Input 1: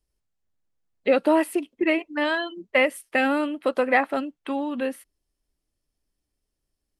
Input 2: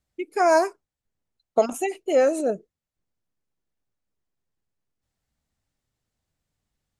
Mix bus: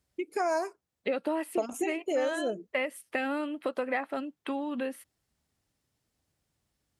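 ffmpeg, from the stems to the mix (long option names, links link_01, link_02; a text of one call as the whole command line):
ffmpeg -i stem1.wav -i stem2.wav -filter_complex "[0:a]highpass=86,volume=-1dB[link_01];[1:a]highpass=54,volume=1.5dB[link_02];[link_01][link_02]amix=inputs=2:normalize=0,acompressor=threshold=-32dB:ratio=2.5" out.wav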